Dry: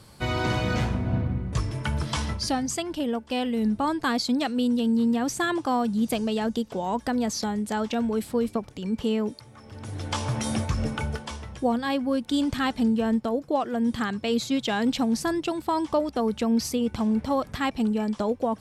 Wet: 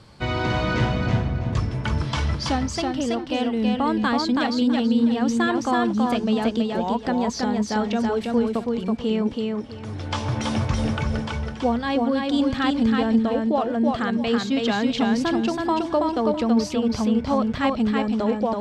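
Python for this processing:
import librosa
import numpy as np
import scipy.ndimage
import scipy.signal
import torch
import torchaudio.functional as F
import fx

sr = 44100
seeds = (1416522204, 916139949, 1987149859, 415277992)

p1 = scipy.signal.sosfilt(scipy.signal.butter(2, 5100.0, 'lowpass', fs=sr, output='sos'), x)
p2 = p1 + fx.echo_feedback(p1, sr, ms=327, feedback_pct=25, wet_db=-3, dry=0)
y = p2 * 10.0 ** (2.0 / 20.0)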